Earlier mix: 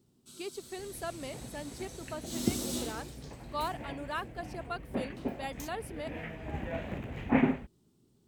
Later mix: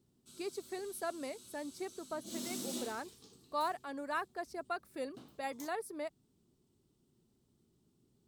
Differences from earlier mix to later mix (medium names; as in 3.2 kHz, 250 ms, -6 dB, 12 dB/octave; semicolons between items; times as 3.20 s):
speech: add peaking EQ 3.1 kHz -11.5 dB 0.37 oct; first sound -5.0 dB; second sound: muted